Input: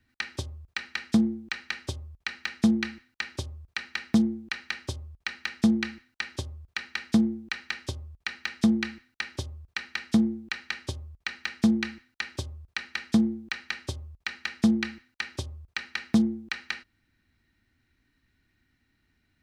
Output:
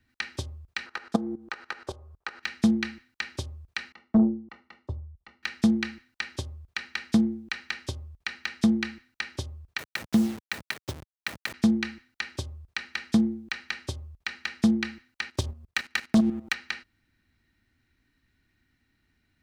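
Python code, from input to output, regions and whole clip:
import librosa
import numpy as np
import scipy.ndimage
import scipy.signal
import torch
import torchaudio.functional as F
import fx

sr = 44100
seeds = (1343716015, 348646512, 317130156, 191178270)

y = fx.chain(x, sr, fx.band_shelf(hz=720.0, db=13.0, octaves=2.4),
    fx.level_steps(step_db=16), at=(0.86, 2.43))
y = fx.chain(y, sr, fx.savgol(points=65),
    fx.tube_stage(drive_db=19.0, bias=0.2),
    fx.band_widen(depth_pct=70), at=(3.92, 5.43))
y = fx.chain(y, sr, fx.delta_hold(step_db=-34.0),
    fx.highpass(hz=81.0, slope=12), at=(9.78, 11.54))
y = fx.chain(y, sr, fx.level_steps(step_db=10),
    fx.leveller(passes=2), at=(15.3, 16.54))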